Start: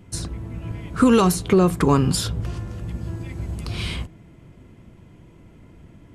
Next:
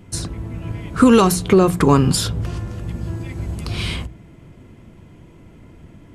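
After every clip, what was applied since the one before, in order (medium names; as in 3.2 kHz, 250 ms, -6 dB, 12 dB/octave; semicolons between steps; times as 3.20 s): hum notches 60/120/180 Hz; trim +4 dB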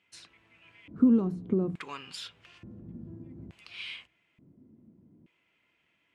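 LFO band-pass square 0.57 Hz 240–2600 Hz; trim -8.5 dB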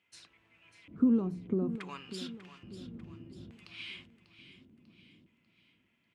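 feedback delay 594 ms, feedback 47%, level -13 dB; trim -4 dB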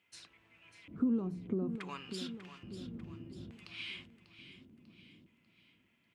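compression 1.5:1, threshold -40 dBFS, peak gain reduction 7 dB; trim +1 dB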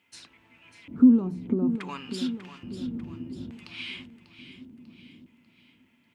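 small resonant body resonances 250/890 Hz, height 11 dB, ringing for 100 ms; trim +6 dB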